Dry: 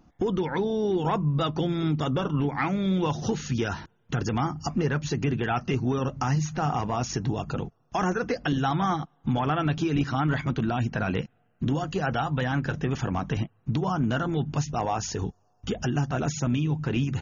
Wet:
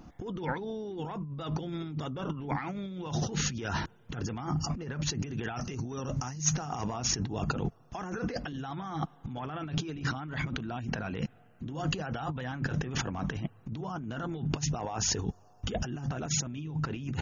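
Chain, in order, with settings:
compressor whose output falls as the input rises −35 dBFS, ratio −1
0:05.19–0:06.94: parametric band 6,100 Hz +12 dB 0.62 octaves

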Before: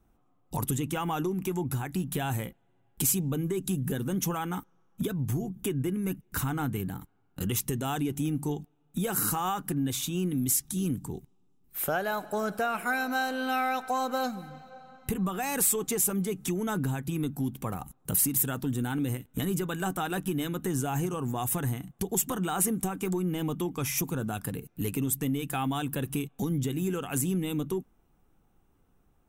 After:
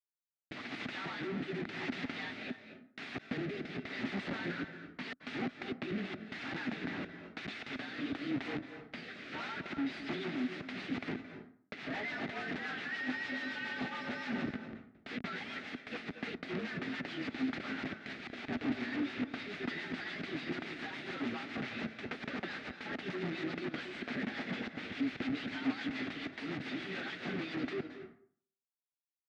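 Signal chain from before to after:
partials spread apart or drawn together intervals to 110%
first difference
mains-hum notches 60/120/180/240/300 Hz
downward compressor 12 to 1, threshold −42 dBFS, peak gain reduction 21 dB
comparator with hysteresis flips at −56.5 dBFS
rotating-speaker cabinet horn 0.9 Hz, later 7 Hz, at 0:09.18
wrap-around overflow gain 45.5 dB
loudspeaker in its box 170–3,300 Hz, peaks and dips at 250 Hz +9 dB, 510 Hz −7 dB, 1,000 Hz −10 dB, 2,000 Hz +4 dB, 3,100 Hz −4 dB
convolution reverb RT60 0.55 s, pre-delay 212 ms, DRR 9 dB
level +16.5 dB

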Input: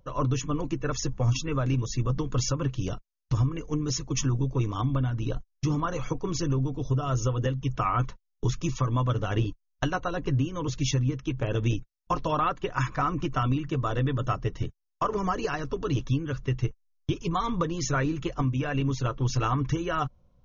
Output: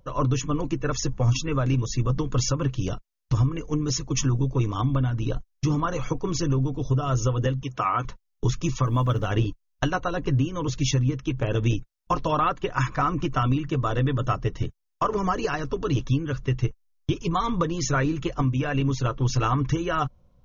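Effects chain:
0:07.63–0:08.05: high-pass filter 320 Hz 6 dB per octave
0:08.86–0:09.31: floating-point word with a short mantissa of 6 bits
level +3 dB

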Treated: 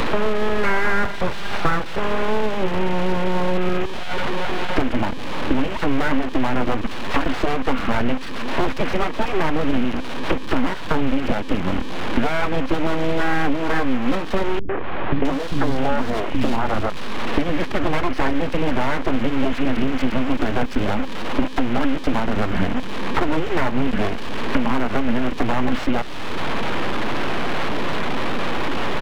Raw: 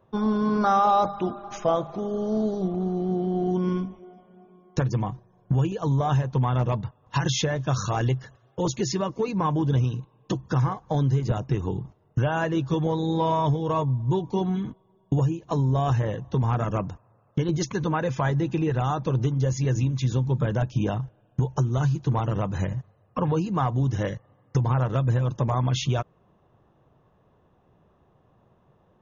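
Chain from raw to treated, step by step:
linear delta modulator 16 kbit/s, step −29.5 dBFS
comb filter 1.4 ms, depth 34%
full-wave rectification
0:14.59–0:16.90: three-band delay without the direct sound lows, mids, highs 100/660 ms, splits 250/2,200 Hz
multiband upward and downward compressor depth 100%
level +6.5 dB

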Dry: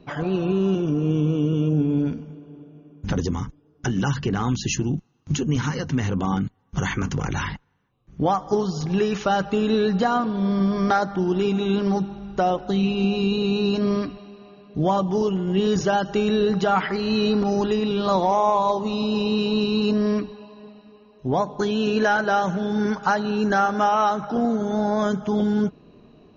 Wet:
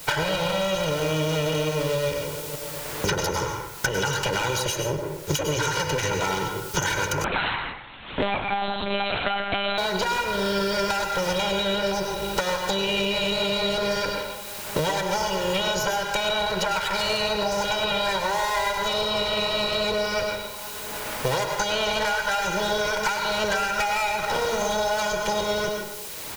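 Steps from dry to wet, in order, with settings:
lower of the sound and its delayed copy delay 1.3 ms
noise gate −42 dBFS, range −8 dB
spectral tilt +2.5 dB per octave
comb filter 2.1 ms, depth 87%
downward compressor, threshold −27 dBFS, peak gain reduction 12.5 dB
leveller curve on the samples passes 1
background noise white −54 dBFS
convolution reverb RT60 0.60 s, pre-delay 91 ms, DRR 4 dB
0:07.24–0:09.78: one-pitch LPC vocoder at 8 kHz 200 Hz
multiband upward and downward compressor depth 100%

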